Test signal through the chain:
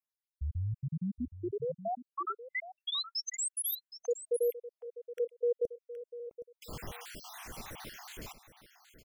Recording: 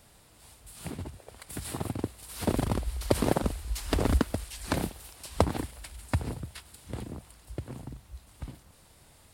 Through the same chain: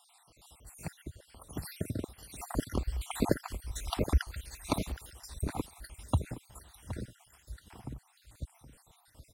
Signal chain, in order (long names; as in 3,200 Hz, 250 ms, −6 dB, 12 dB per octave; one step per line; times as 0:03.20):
time-frequency cells dropped at random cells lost 65%
single-tap delay 769 ms −13.5 dB